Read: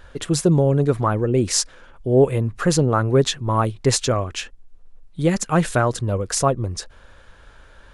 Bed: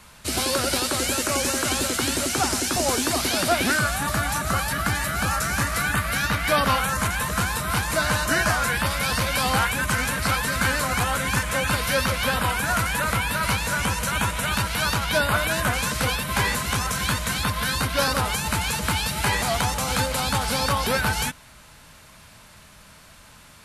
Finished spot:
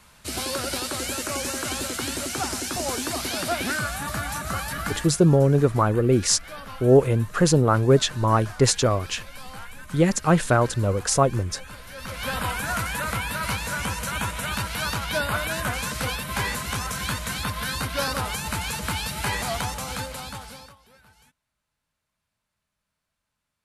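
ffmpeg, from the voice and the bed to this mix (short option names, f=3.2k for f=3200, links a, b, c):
-filter_complex "[0:a]adelay=4750,volume=-0.5dB[a];[1:a]volume=10dB,afade=t=out:st=4.89:d=0.25:silence=0.199526,afade=t=in:st=11.96:d=0.42:silence=0.177828,afade=t=out:st=19.51:d=1.25:silence=0.0354813[b];[a][b]amix=inputs=2:normalize=0"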